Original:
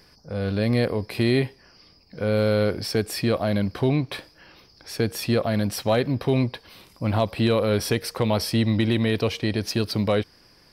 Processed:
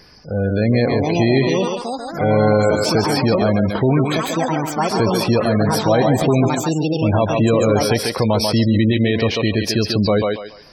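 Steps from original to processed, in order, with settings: ever faster or slower copies 626 ms, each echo +6 st, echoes 3, each echo -6 dB; 7.07–7.76 s: dynamic bell 4.4 kHz, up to -6 dB, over -48 dBFS, Q 3; thinning echo 141 ms, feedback 30%, high-pass 320 Hz, level -4 dB; in parallel at +3 dB: peak limiter -15.5 dBFS, peak gain reduction 9 dB; on the sum: spectral gate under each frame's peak -25 dB strong

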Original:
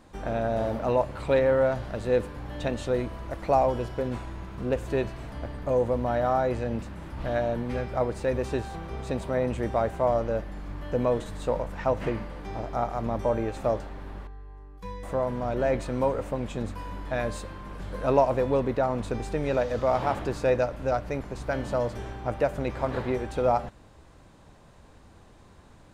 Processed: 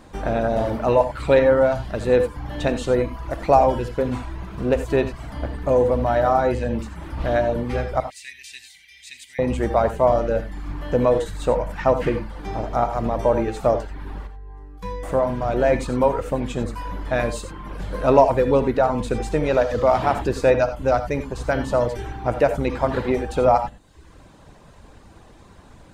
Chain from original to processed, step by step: reverb removal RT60 0.76 s; 8.00–9.39 s: elliptic high-pass 2 kHz, stop band 40 dB; gated-style reverb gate 110 ms rising, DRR 9 dB; trim +7.5 dB

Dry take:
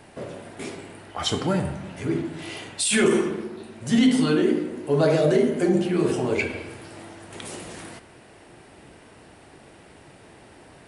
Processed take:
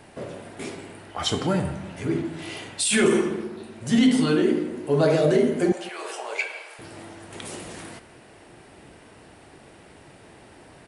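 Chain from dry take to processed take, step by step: 5.72–6.79 s: high-pass 630 Hz 24 dB/octave; delay 168 ms -21 dB

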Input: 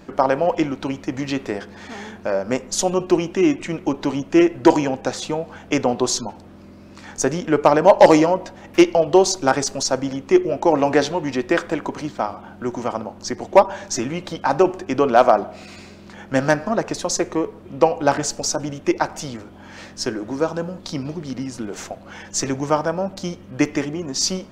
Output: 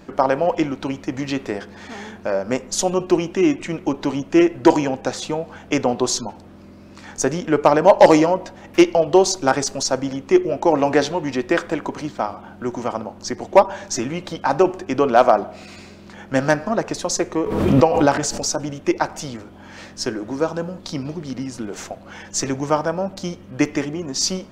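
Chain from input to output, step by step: 17.44–18.45 s: swell ahead of each attack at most 40 dB/s

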